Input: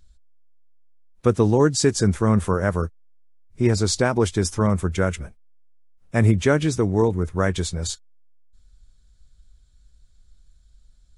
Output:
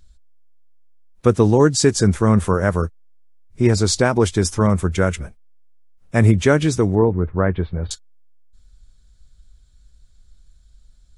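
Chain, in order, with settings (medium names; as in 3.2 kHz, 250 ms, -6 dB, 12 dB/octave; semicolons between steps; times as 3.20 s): 6.95–7.91 s: Gaussian low-pass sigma 4 samples; trim +3.5 dB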